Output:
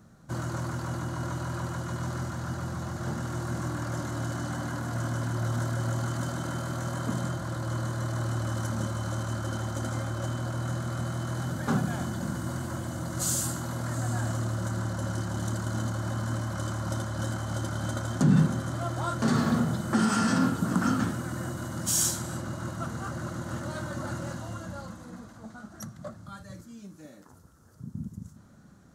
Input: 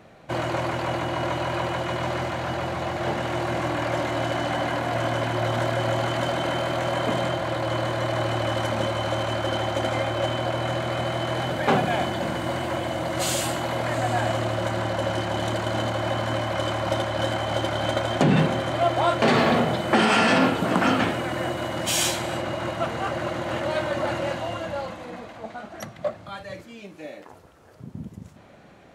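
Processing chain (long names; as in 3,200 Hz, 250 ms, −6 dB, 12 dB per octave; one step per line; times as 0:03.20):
drawn EQ curve 220 Hz 0 dB, 400 Hz −12 dB, 710 Hz −16 dB, 1,400 Hz −5 dB, 2,400 Hz −22 dB, 6,200 Hz +1 dB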